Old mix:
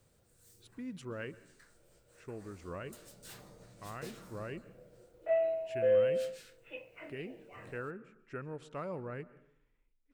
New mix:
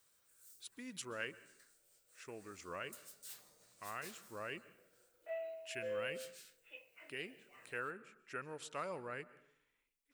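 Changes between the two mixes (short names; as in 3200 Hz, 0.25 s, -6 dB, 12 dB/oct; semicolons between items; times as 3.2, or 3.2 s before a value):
background -11.0 dB; master: add tilt +4 dB/oct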